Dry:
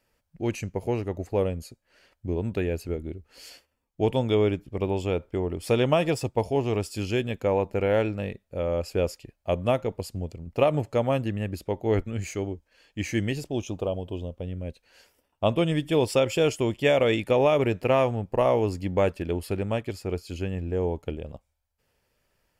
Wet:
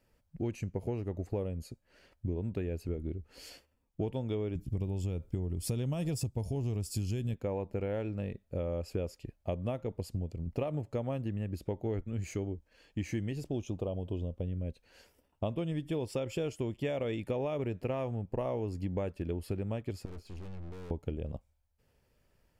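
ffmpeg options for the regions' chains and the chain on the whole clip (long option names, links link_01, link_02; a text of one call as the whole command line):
ffmpeg -i in.wav -filter_complex "[0:a]asettb=1/sr,asplit=3[link_01][link_02][link_03];[link_01]atrim=end=4.554[link_04];[link_02]atrim=start=4.55:end=7.34,asetpts=PTS-STARTPTS,afade=type=in:duration=0.004:curve=qsin,afade=type=out:start_time=2.786:duration=0.004:curve=qsin,acompressor=threshold=-31dB:ratio=1.5:attack=3.2:release=140:knee=1:detection=peak,bass=frequency=250:gain=11,treble=frequency=4000:gain=15[link_05];[link_03]atrim=start=7.336[link_06];[link_04][link_05]acrossfade=duration=0.004:curve1=hsin:curve2=qsin[link_07];[link_07][link_06]acrossfade=duration=0.004:curve1=qsin:curve2=hsin,asettb=1/sr,asplit=3[link_08][link_09][link_10];[link_08]atrim=end=20.054[link_11];[link_09]atrim=start=20.05:end=20.91,asetpts=PTS-STARTPTS,afade=type=in:duration=0.004:curve=qsin,afade=type=out:start_time=0.856:duration=0.004:curve=qsin,agate=range=-33dB:threshold=-44dB:ratio=3:release=100:detection=peak,aemphasis=mode=reproduction:type=cd,aeval=exprs='(tanh(200*val(0)+0.5)-tanh(0.5))/200':channel_layout=same[link_12];[link_10]atrim=start=20.906[link_13];[link_11][link_12]acrossfade=duration=0.004:curve1=hsin:curve2=qsin[link_14];[link_14][link_13]acrossfade=duration=0.004:curve1=qsin:curve2=hsin,lowshelf=frequency=460:gain=9,acompressor=threshold=-27dB:ratio=6,volume=-4.5dB" out.wav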